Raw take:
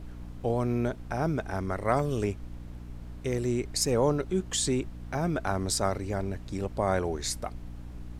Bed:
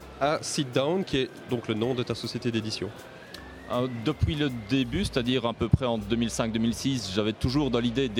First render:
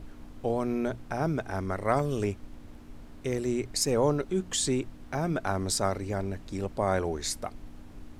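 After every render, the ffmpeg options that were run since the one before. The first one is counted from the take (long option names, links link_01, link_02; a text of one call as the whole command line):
ffmpeg -i in.wav -af "bandreject=frequency=60:width_type=h:width=6,bandreject=frequency=120:width_type=h:width=6,bandreject=frequency=180:width_type=h:width=6" out.wav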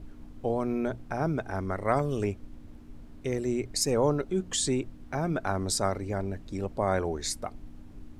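ffmpeg -i in.wav -af "afftdn=noise_reduction=6:noise_floor=-48" out.wav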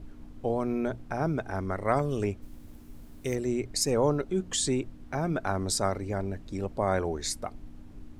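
ffmpeg -i in.wav -filter_complex "[0:a]asplit=3[link_01][link_02][link_03];[link_01]afade=type=out:start_time=2.41:duration=0.02[link_04];[link_02]aemphasis=mode=production:type=50fm,afade=type=in:start_time=2.41:duration=0.02,afade=type=out:start_time=3.34:duration=0.02[link_05];[link_03]afade=type=in:start_time=3.34:duration=0.02[link_06];[link_04][link_05][link_06]amix=inputs=3:normalize=0" out.wav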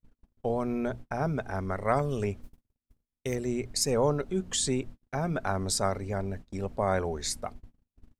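ffmpeg -i in.wav -af "agate=range=-47dB:threshold=-39dB:ratio=16:detection=peak,equalizer=frequency=320:width=7.4:gain=-11" out.wav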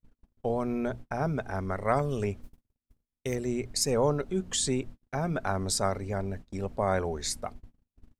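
ffmpeg -i in.wav -af anull out.wav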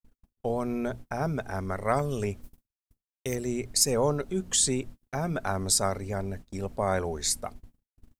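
ffmpeg -i in.wav -af "agate=range=-33dB:threshold=-54dB:ratio=3:detection=peak,highshelf=frequency=6600:gain=11" out.wav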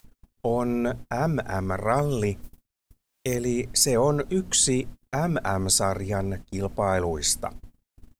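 ffmpeg -i in.wav -filter_complex "[0:a]asplit=2[link_01][link_02];[link_02]alimiter=limit=-20dB:level=0:latency=1:release=24,volume=-2dB[link_03];[link_01][link_03]amix=inputs=2:normalize=0,acompressor=mode=upward:threshold=-44dB:ratio=2.5" out.wav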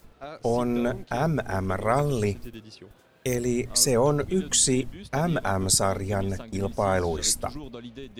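ffmpeg -i in.wav -i bed.wav -filter_complex "[1:a]volume=-14.5dB[link_01];[0:a][link_01]amix=inputs=2:normalize=0" out.wav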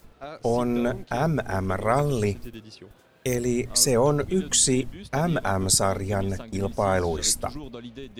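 ffmpeg -i in.wav -af "volume=1dB" out.wav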